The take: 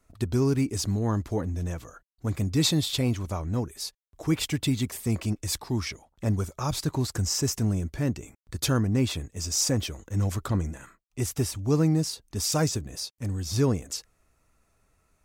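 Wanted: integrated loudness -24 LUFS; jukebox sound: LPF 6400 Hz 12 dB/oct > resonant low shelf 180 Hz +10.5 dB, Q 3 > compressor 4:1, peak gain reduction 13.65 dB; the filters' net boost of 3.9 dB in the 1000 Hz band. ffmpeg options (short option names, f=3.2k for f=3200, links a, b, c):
-af "lowpass=6.4k,lowshelf=f=180:t=q:w=3:g=10.5,equalizer=f=1k:t=o:g=5.5,acompressor=threshold=-23dB:ratio=4,volume=2.5dB"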